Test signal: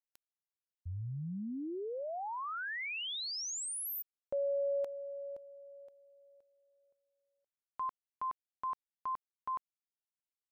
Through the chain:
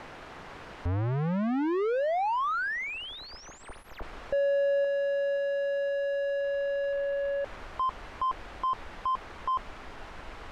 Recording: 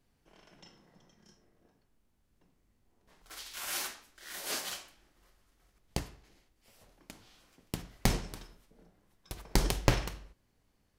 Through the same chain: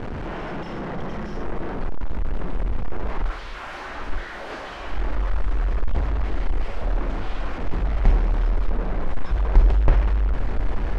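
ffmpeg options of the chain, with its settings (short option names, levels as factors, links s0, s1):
-af "aeval=exprs='val(0)+0.5*0.075*sgn(val(0))':c=same,asubboost=boost=6:cutoff=54,lowpass=1500"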